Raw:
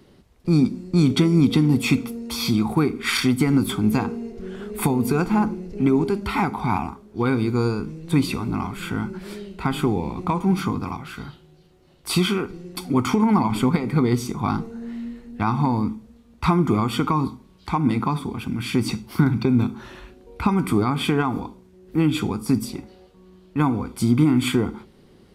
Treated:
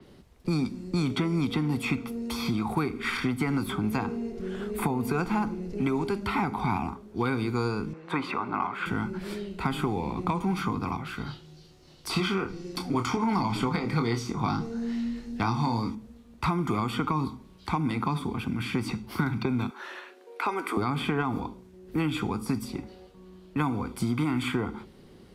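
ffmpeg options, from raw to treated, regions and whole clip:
ffmpeg -i in.wav -filter_complex "[0:a]asettb=1/sr,asplit=3[link_01][link_02][link_03];[link_01]atrim=end=7.934[link_04];[link_02]atrim=start=7.93:end=8.86,asetpts=PTS-STARTPTS,afade=type=in:duration=0.004:curve=qsin,afade=type=out:start_time=0.926:duration=0.004:curve=qsin,bandpass=frequency=1100:width_type=q:width=0.74,equalizer=frequency=1300:width_type=o:width=2.2:gain=9.5[link_05];[link_03]atrim=start=8.856[link_06];[link_04][link_05]acrossfade=duration=0.004:curve1=hsin:curve2=qsin[link_07];[link_07][link_06]acrossfade=duration=0.004:curve1=qsin:curve2=hsin,asettb=1/sr,asplit=3[link_08][link_09][link_10];[link_08]atrim=end=11.264[link_11];[link_09]atrim=start=11.26:end=15.95,asetpts=PTS-STARTPTS,afade=type=in:duration=0.004:curve=qsin,afade=type=out:start_time=4.686:duration=0.004:curve=qsin,equalizer=frequency=5300:width_type=o:width=1.1:gain=10.5,asplit=2[link_12][link_13];[link_13]adelay=26,volume=-6.5dB[link_14];[link_12][link_14]amix=inputs=2:normalize=0,atrim=end_sample=206829[link_15];[link_10]atrim=start=15.946[link_16];[link_11][link_15]acrossfade=duration=0.004:curve1=hsin:curve2=qsin[link_17];[link_17][link_16]acrossfade=duration=0.004:curve1=qsin:curve2=hsin,asettb=1/sr,asplit=3[link_18][link_19][link_20];[link_18]atrim=end=19.704[link_21];[link_19]atrim=start=19.7:end=20.77,asetpts=PTS-STARTPTS,afade=type=in:duration=0.004:curve=qsin,afade=type=out:start_time=1.066:duration=0.004:curve=qsin,highpass=frequency=400:width=0.5412,highpass=frequency=400:width=1.3066,equalizer=frequency=1700:width_type=o:width=0.9:gain=5[link_22];[link_20]atrim=start=20.766[link_23];[link_21][link_22]acrossfade=duration=0.004:curve1=hsin:curve2=qsin[link_24];[link_24][link_23]acrossfade=duration=0.004:curve1=qsin:curve2=hsin,acrossover=split=100|660|2200[link_25][link_26][link_27][link_28];[link_25]acompressor=threshold=-41dB:ratio=4[link_29];[link_26]acompressor=threshold=-28dB:ratio=4[link_30];[link_27]acompressor=threshold=-30dB:ratio=4[link_31];[link_28]acompressor=threshold=-40dB:ratio=4[link_32];[link_29][link_30][link_31][link_32]amix=inputs=4:normalize=0,adynamicequalizer=threshold=0.00251:dfrequency=5300:dqfactor=0.7:tfrequency=5300:tqfactor=0.7:attack=5:release=100:ratio=0.375:range=2.5:mode=cutabove:tftype=highshelf" out.wav

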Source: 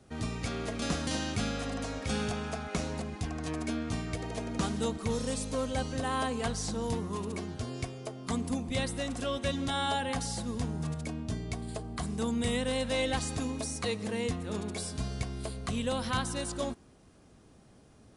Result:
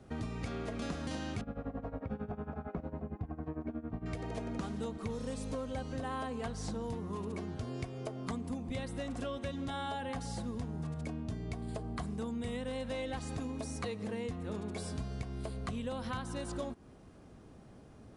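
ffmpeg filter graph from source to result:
ffmpeg -i in.wav -filter_complex "[0:a]asettb=1/sr,asplit=3[link_01][link_02][link_03];[link_01]atrim=end=1.414[link_04];[link_02]atrim=start=1.41:end=4.06,asetpts=PTS-STARTPTS,afade=type=in:duration=0.004:curve=qsin,afade=type=out:start_time=2.646:duration=0.004:curve=qsin,lowpass=1100,tremolo=f=11:d=0.86[link_05];[link_03]atrim=start=4.056[link_06];[link_04][link_05]acrossfade=duration=0.004:curve1=hsin:curve2=qsin[link_07];[link_07][link_06]acrossfade=duration=0.004:curve1=qsin:curve2=hsin,highshelf=frequency=2900:gain=-10,acompressor=threshold=-39dB:ratio=6,volume=3.5dB" out.wav

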